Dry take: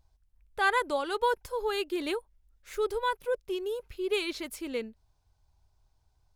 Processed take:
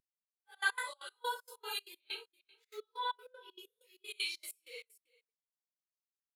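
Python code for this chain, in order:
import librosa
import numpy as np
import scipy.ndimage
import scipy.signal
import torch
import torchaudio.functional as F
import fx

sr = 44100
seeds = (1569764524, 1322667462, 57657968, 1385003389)

y = fx.phase_scramble(x, sr, seeds[0], window_ms=200)
y = scipy.signal.sosfilt(scipy.signal.butter(4, 340.0, 'highpass', fs=sr, output='sos'), y)
y = np.diff(y, prepend=0.0)
y = fx.notch(y, sr, hz=670.0, q=22.0)
y = fx.high_shelf_res(y, sr, hz=5400.0, db=-7.5, q=1.5, at=(2.0, 3.59))
y = y + 10.0 ** (-16.0 / 20.0) * np.pad(y, (int(395 * sr / 1000.0), 0))[:len(y)]
y = fx.step_gate(y, sr, bpm=193, pattern='x.x..xx.x.x', floor_db=-24.0, edge_ms=4.5)
y = fx.spectral_expand(y, sr, expansion=1.5)
y = y * 10.0 ** (10.0 / 20.0)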